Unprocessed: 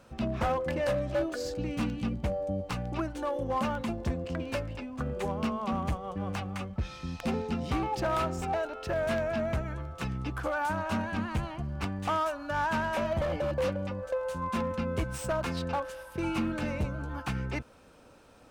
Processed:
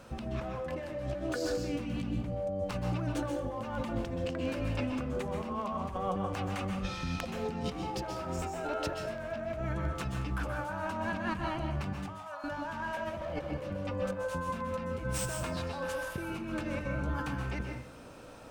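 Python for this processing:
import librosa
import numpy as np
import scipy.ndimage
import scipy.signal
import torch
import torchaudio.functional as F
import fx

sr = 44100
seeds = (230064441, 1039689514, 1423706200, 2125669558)

y = fx.over_compress(x, sr, threshold_db=-37.0, ratio=-1.0)
y = fx.ladder_highpass(y, sr, hz=600.0, resonance_pct=35, at=(11.93, 12.44))
y = fx.rev_plate(y, sr, seeds[0], rt60_s=0.59, hf_ratio=0.75, predelay_ms=115, drr_db=3.0)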